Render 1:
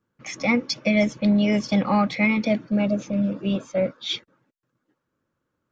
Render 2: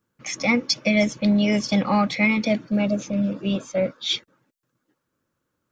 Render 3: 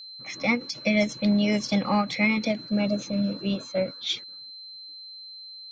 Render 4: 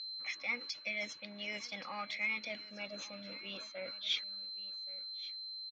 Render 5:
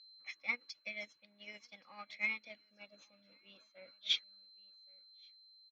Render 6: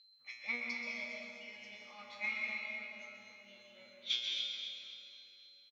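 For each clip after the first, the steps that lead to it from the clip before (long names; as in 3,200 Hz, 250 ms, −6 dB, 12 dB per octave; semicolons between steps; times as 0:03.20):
high-shelf EQ 4,300 Hz +9 dB
low-pass that shuts in the quiet parts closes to 1,100 Hz, open at −21 dBFS; steady tone 4,100 Hz −37 dBFS; every ending faded ahead of time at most 220 dB per second; level −3 dB
reversed playback; downward compressor 6 to 1, threshold −32 dBFS, peak gain reduction 13.5 dB; reversed playback; resonant band-pass 2,400 Hz, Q 1; single-tap delay 1,125 ms −18 dB; level +2.5 dB
expander for the loud parts 2.5 to 1, over −47 dBFS; level +3.5 dB
tuned comb filter 120 Hz, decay 0.48 s, harmonics all, mix 90%; on a send: repeating echo 263 ms, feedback 49%, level −10 dB; on the sum: dense smooth reverb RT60 2.6 s, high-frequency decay 0.65×, pre-delay 110 ms, DRR −1.5 dB; level +10 dB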